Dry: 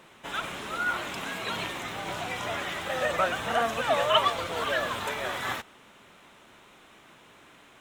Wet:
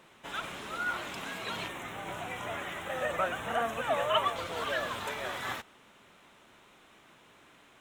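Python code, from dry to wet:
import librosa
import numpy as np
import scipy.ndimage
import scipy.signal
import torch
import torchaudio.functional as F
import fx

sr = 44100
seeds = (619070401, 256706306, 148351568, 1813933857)

y = fx.peak_eq(x, sr, hz=4700.0, db=-14.5, octaves=0.52, at=(1.68, 4.36))
y = F.gain(torch.from_numpy(y), -4.5).numpy()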